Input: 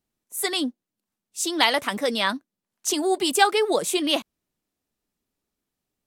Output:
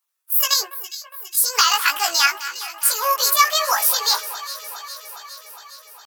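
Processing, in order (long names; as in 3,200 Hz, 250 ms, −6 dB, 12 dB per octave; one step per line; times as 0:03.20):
high-shelf EQ 3,500 Hz +12 dB
leveller curve on the samples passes 1
downward compressor 6 to 1, threshold −15 dBFS, peak gain reduction 8.5 dB
pitch shifter +6.5 semitones
high-pass with resonance 1,200 Hz, resonance Q 2
double-tracking delay 18 ms −3 dB
on a send: delay that swaps between a low-pass and a high-pass 205 ms, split 2,200 Hz, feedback 82%, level −12.5 dB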